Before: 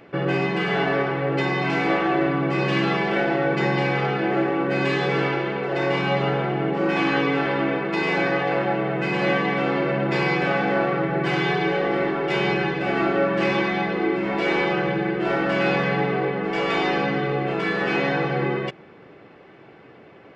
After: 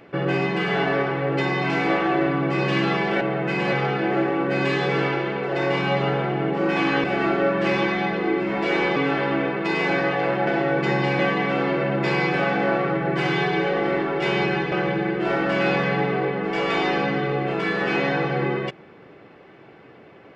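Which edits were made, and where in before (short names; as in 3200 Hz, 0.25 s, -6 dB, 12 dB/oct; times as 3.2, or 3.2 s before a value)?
3.21–3.93 swap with 8.75–9.27
12.8–14.72 move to 7.24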